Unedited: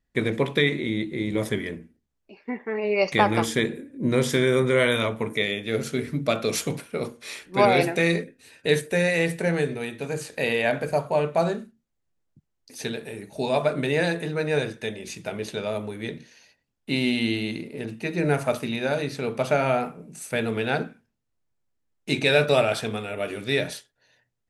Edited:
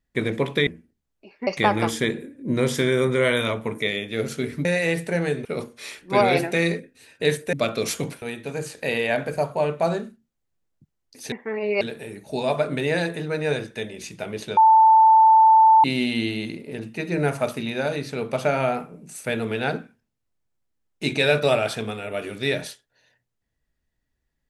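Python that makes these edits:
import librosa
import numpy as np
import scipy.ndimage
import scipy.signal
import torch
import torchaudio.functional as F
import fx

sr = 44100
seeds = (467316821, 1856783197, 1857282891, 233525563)

y = fx.edit(x, sr, fx.cut(start_s=0.67, length_s=1.06),
    fx.move(start_s=2.53, length_s=0.49, to_s=12.87),
    fx.swap(start_s=6.2, length_s=0.69, other_s=8.97, other_length_s=0.8),
    fx.bleep(start_s=15.63, length_s=1.27, hz=885.0, db=-10.0), tone=tone)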